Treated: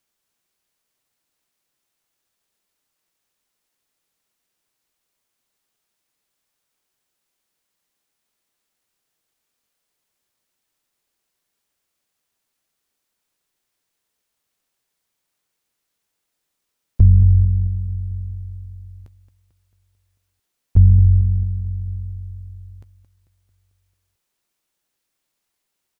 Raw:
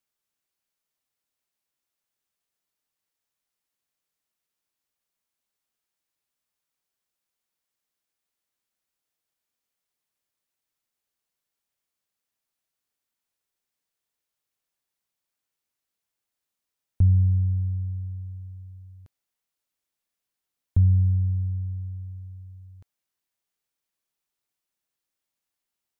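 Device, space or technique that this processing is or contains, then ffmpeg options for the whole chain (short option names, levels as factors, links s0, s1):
octave pedal: -filter_complex "[0:a]equalizer=f=370:t=o:w=0.86:g=2.5,aecho=1:1:222|444|666|888|1110|1332:0.237|0.135|0.077|0.0439|0.025|0.0143,asplit=2[s0][s1];[s1]asetrate=22050,aresample=44100,atempo=2,volume=0.501[s2];[s0][s2]amix=inputs=2:normalize=0,volume=2.24"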